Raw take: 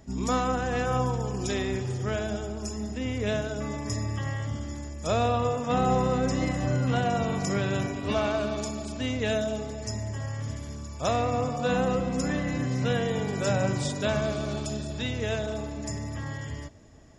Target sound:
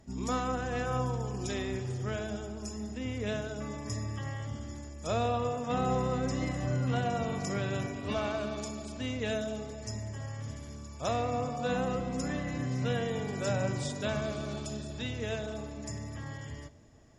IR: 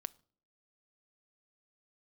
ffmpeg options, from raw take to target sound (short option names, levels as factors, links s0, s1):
-filter_complex "[1:a]atrim=start_sample=2205,asetrate=26901,aresample=44100[s0];[0:a][s0]afir=irnorm=-1:irlink=0,volume=0.562"